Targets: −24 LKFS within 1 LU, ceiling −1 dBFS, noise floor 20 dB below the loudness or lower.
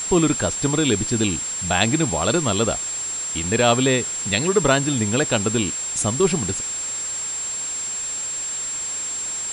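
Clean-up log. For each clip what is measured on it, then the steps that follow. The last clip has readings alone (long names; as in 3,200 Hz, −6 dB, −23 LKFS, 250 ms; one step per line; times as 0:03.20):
interfering tone 7,500 Hz; level of the tone −25 dBFS; background noise floor −28 dBFS; target noise floor −41 dBFS; integrated loudness −21.0 LKFS; sample peak −3.5 dBFS; target loudness −24.0 LKFS
→ notch filter 7,500 Hz, Q 30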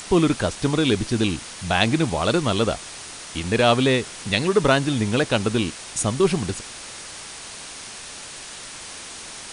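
interfering tone none found; background noise floor −38 dBFS; target noise floor −42 dBFS
→ broadband denoise 6 dB, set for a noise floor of −38 dBFS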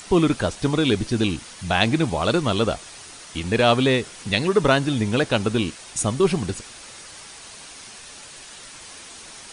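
background noise floor −42 dBFS; integrated loudness −21.5 LKFS; sample peak −3.0 dBFS; target loudness −24.0 LKFS
→ level −2.5 dB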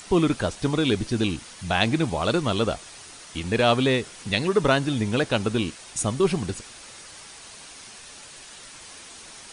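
integrated loudness −24.0 LKFS; sample peak −5.5 dBFS; background noise floor −44 dBFS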